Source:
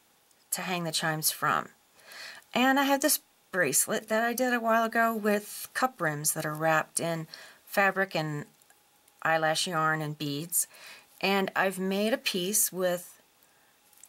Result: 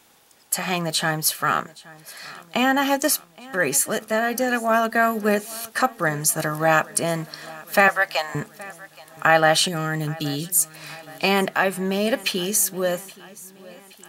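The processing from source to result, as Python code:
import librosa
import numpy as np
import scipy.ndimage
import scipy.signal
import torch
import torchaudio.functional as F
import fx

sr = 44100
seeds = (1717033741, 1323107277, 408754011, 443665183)

y = fx.highpass(x, sr, hz=620.0, slope=24, at=(7.88, 8.35))
y = fx.peak_eq(y, sr, hz=1100.0, db=-14.5, octaves=1.7, at=(9.68, 10.75))
y = fx.rider(y, sr, range_db=10, speed_s=2.0)
y = fx.echo_feedback(y, sr, ms=822, feedback_pct=58, wet_db=-21.5)
y = y * librosa.db_to_amplitude(6.0)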